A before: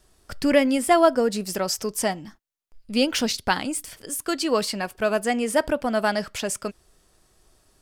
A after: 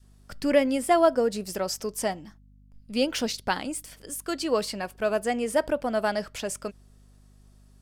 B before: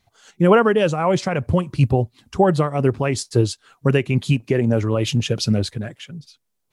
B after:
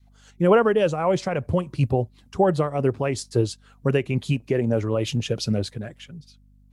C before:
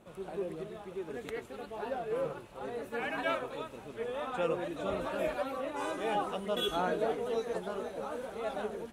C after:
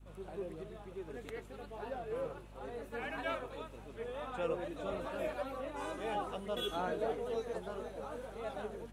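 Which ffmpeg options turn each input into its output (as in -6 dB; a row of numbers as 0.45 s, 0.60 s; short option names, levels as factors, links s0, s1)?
-af "aeval=exprs='val(0)+0.00398*(sin(2*PI*50*n/s)+sin(2*PI*2*50*n/s)/2+sin(2*PI*3*50*n/s)/3+sin(2*PI*4*50*n/s)/4+sin(2*PI*5*50*n/s)/5)':c=same,adynamicequalizer=threshold=0.0316:dfrequency=530:dqfactor=1.2:tfrequency=530:tqfactor=1.2:attack=5:release=100:ratio=0.375:range=2:mode=boostabove:tftype=bell,volume=0.531"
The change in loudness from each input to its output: -3.5 LU, -4.0 LU, -5.0 LU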